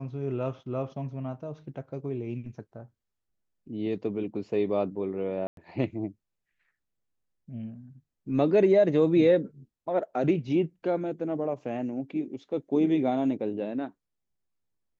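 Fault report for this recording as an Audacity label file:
5.470000	5.570000	drop-out 102 ms

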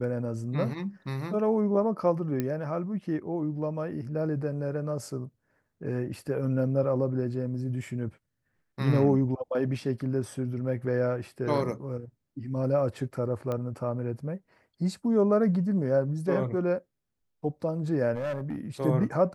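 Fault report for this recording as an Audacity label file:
2.400000	2.400000	click −16 dBFS
13.520000	13.520000	click −20 dBFS
18.150000	18.580000	clipping −28 dBFS

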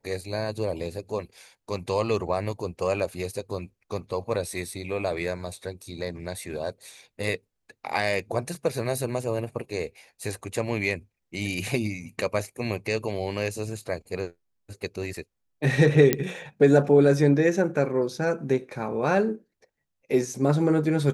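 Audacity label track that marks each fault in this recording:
16.130000	16.130000	click −6 dBFS

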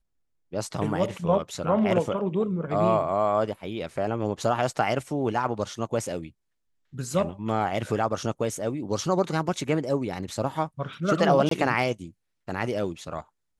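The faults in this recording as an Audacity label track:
11.490000	11.510000	drop-out 23 ms

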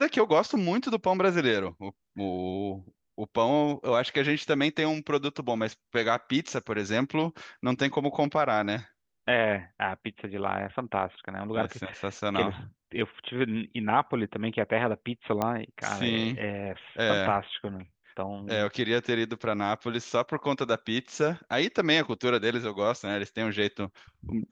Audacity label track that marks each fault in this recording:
15.420000	15.420000	click −14 dBFS

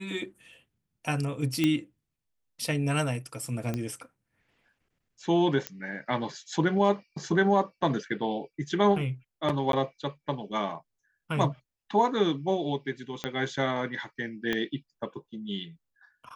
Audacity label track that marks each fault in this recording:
1.640000	1.640000	click −12 dBFS
3.740000	3.740000	click −18 dBFS
5.670000	5.670000	click −14 dBFS
9.720000	9.730000	drop-out 12 ms
13.240000	13.240000	click −15 dBFS
14.530000	14.530000	click −15 dBFS

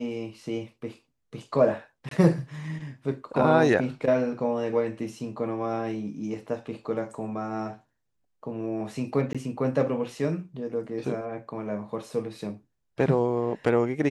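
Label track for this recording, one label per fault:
2.090000	2.110000	drop-out 23 ms
9.330000	9.350000	drop-out 16 ms

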